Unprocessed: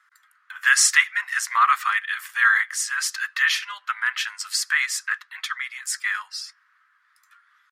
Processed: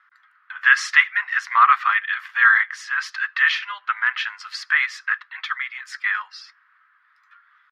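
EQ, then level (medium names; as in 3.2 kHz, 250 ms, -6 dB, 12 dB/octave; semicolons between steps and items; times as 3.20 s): distance through air 290 m; hum notches 60/120/180/240/300/360/420 Hz; +5.5 dB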